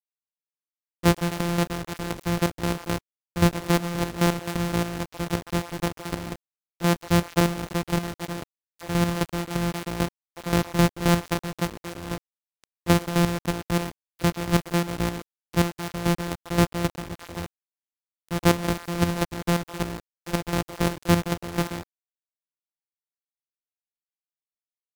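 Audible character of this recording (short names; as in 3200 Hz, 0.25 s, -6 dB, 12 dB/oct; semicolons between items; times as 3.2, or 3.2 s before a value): a buzz of ramps at a fixed pitch in blocks of 256 samples; chopped level 3.8 Hz, depth 65%, duty 35%; a quantiser's noise floor 6-bit, dither none; AAC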